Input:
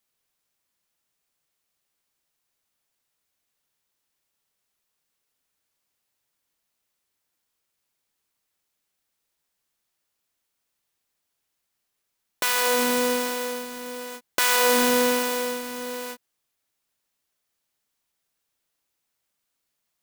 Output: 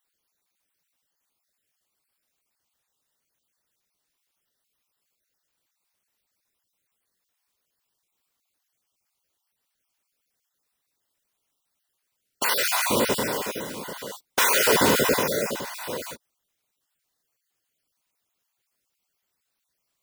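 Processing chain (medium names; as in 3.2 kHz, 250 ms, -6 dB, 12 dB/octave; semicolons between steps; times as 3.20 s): random holes in the spectrogram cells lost 31%; whisper effect; trim +2 dB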